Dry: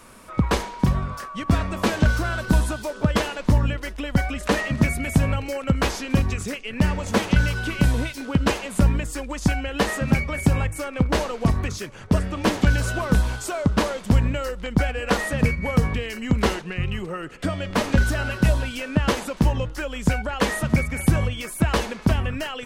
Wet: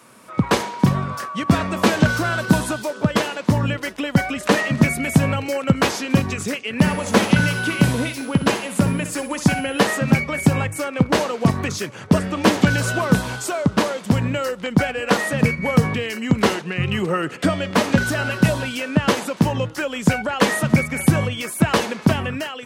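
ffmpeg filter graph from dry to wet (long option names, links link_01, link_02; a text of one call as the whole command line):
ffmpeg -i in.wav -filter_complex "[0:a]asettb=1/sr,asplit=3[link_01][link_02][link_03];[link_01]atrim=end=6.794[link_04];[link_02]atrim=start=6.79:end=9.87,asetpts=PTS-STARTPTS,afade=type=in:duration=0.004:curve=qsin,afade=type=out:start_time=3.076:duration=0.004:curve=qsin,aeval=exprs='val(0)+0.00355*sin(2*PI*10000*n/s)':channel_layout=same,aecho=1:1:63|126|189:0.282|0.0846|0.0254,atrim=end_sample=135828[link_05];[link_03]atrim=start=9.866[link_06];[link_04][link_05]acrossfade=duration=0.004:curve1=hsin:curve2=qsin[link_07];[link_07][link_06]acrossfade=duration=0.004:curve1=qsin:curve2=hsin,highpass=frequency=110:width=0.5412,highpass=frequency=110:width=1.3066,dynaudnorm=framelen=110:gausssize=7:maxgain=11.5dB,volume=-1dB" out.wav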